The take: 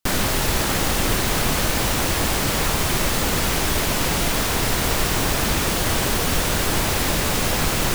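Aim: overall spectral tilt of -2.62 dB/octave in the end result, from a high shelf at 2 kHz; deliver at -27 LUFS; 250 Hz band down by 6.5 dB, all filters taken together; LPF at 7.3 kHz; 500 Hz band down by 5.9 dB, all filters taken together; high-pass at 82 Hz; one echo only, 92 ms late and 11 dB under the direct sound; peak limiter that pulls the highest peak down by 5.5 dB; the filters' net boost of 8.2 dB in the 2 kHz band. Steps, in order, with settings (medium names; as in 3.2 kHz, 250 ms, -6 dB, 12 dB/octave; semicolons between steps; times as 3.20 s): high-pass 82 Hz; low-pass 7.3 kHz; peaking EQ 250 Hz -7.5 dB; peaking EQ 500 Hz -6.5 dB; treble shelf 2 kHz +6 dB; peaking EQ 2 kHz +7 dB; peak limiter -11.5 dBFS; delay 92 ms -11 dB; trim -8.5 dB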